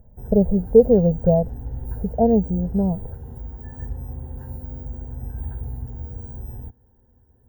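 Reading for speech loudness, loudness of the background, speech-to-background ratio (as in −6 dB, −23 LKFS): −19.0 LKFS, −34.5 LKFS, 15.5 dB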